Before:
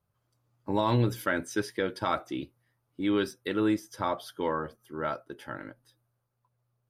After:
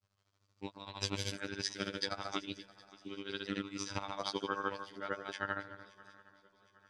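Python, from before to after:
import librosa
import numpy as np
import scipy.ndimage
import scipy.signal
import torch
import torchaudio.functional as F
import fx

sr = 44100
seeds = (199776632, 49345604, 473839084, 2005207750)

p1 = fx.rattle_buzz(x, sr, strikes_db=-35.0, level_db=-35.0)
p2 = scipy.signal.sosfilt(scipy.signal.butter(4, 7900.0, 'lowpass', fs=sr, output='sos'), p1)
p3 = fx.peak_eq(p2, sr, hz=4700.0, db=13.5, octaves=2.8)
p4 = p3 + 10.0 ** (-12.5 / 20.0) * np.pad(p3, (int(190 * sr / 1000.0), 0))[:len(p3)]
p5 = fx.over_compress(p4, sr, threshold_db=-29.0, ratio=-0.5)
p6 = fx.granulator(p5, sr, seeds[0], grain_ms=100.0, per_s=13.0, spray_ms=100.0, spread_st=0)
p7 = fx.robotise(p6, sr, hz=98.9)
p8 = p7 + fx.echo_swing(p7, sr, ms=764, ratio=3, feedback_pct=41, wet_db=-21.0, dry=0)
y = F.gain(torch.from_numpy(p8), -3.5).numpy()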